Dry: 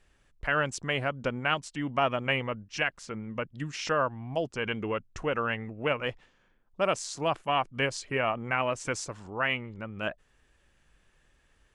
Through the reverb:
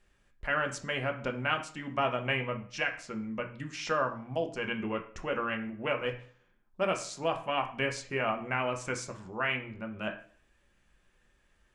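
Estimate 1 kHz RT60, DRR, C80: 0.50 s, 3.0 dB, 15.5 dB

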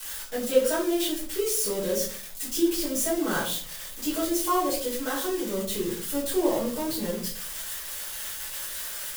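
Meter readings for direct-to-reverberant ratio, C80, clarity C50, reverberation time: -9.5 dB, 10.5 dB, 6.0 dB, 0.45 s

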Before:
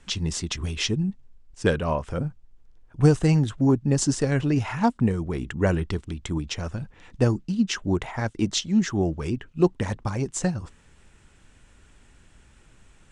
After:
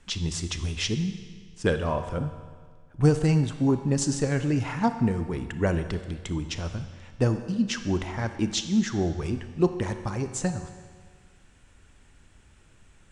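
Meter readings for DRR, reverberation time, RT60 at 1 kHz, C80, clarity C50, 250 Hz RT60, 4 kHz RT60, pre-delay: 8.5 dB, 1.7 s, 1.7 s, 11.0 dB, 9.5 dB, 1.7 s, 1.6 s, 28 ms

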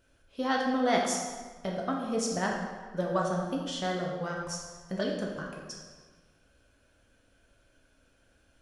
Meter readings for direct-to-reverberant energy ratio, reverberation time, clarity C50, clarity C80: -1.5 dB, 1.4 s, 2.5 dB, 4.5 dB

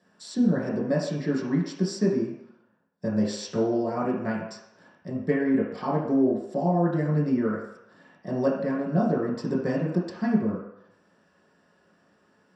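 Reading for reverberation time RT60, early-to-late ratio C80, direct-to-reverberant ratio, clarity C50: 0.75 s, 6.0 dB, -6.5 dB, 3.0 dB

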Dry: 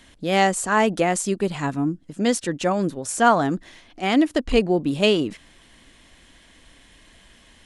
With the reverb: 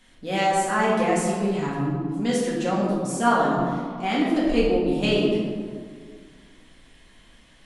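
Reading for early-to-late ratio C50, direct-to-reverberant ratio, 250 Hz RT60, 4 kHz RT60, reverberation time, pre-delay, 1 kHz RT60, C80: 0.0 dB, -6.5 dB, 2.4 s, 1.0 s, 1.9 s, 4 ms, 1.9 s, 2.0 dB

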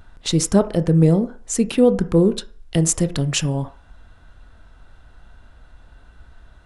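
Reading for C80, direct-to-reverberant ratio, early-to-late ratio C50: 21.0 dB, 10.5 dB, 16.5 dB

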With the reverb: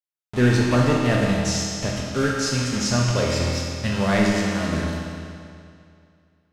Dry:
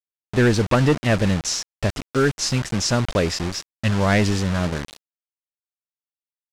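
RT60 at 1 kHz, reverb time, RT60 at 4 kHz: 2.4 s, 2.4 s, 2.2 s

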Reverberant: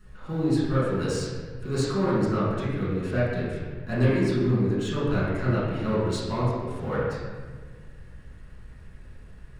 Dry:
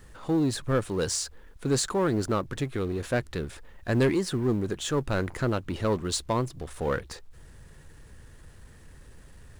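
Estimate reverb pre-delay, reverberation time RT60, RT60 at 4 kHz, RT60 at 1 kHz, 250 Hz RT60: 5 ms, 1.6 s, 1.0 s, 1.4 s, 2.2 s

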